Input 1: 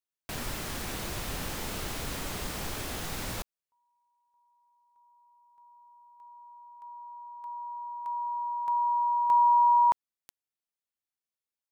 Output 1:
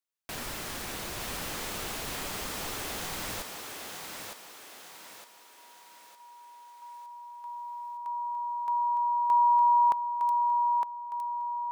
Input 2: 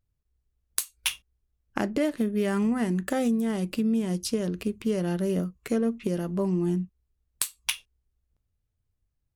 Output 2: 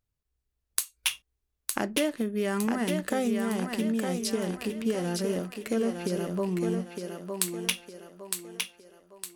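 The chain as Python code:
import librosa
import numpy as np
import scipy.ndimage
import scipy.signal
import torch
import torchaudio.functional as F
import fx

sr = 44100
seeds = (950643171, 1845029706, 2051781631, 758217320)

p1 = fx.low_shelf(x, sr, hz=230.0, db=-7.5)
y = p1 + fx.echo_thinned(p1, sr, ms=910, feedback_pct=45, hz=270.0, wet_db=-4.0, dry=0)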